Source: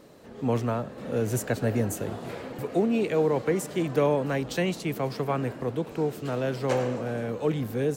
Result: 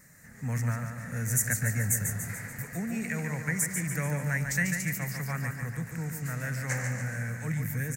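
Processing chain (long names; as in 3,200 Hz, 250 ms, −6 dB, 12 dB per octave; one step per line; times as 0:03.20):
drawn EQ curve 170 Hz 0 dB, 370 Hz −23 dB, 570 Hz −16 dB, 1,100 Hz −11 dB, 1,900 Hz +10 dB, 3,200 Hz −20 dB, 6,700 Hz +9 dB
on a send: repeating echo 144 ms, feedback 54%, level −6 dB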